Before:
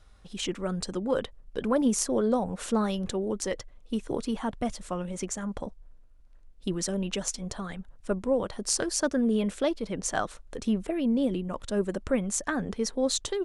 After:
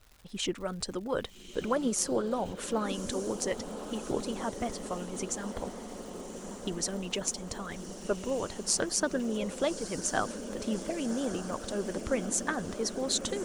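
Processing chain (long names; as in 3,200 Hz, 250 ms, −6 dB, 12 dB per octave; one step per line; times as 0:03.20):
surface crackle 240 per second −42 dBFS
feedback delay with all-pass diffusion 1,189 ms, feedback 70%, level −9 dB
harmonic and percussive parts rebalanced harmonic −8 dB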